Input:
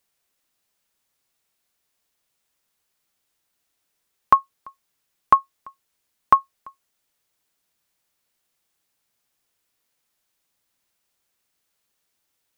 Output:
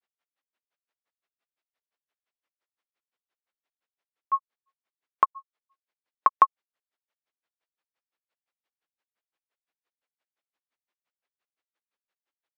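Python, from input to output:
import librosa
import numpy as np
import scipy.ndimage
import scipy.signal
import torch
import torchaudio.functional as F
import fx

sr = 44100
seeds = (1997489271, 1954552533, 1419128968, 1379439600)

y = fx.bandpass_edges(x, sr, low_hz=370.0, high_hz=2800.0)
y = fx.granulator(y, sr, seeds[0], grain_ms=89.0, per_s=5.8, spray_ms=100.0, spread_st=0)
y = y * 10.0 ** (-2.5 / 20.0)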